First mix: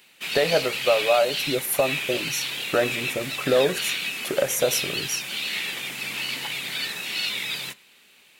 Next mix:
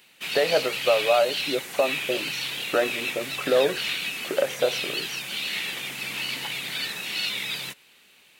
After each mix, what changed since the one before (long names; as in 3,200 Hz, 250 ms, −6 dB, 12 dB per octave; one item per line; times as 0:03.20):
speech: add band-pass filter 260–3,100 Hz
reverb: off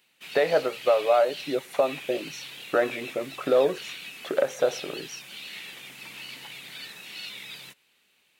background −10.5 dB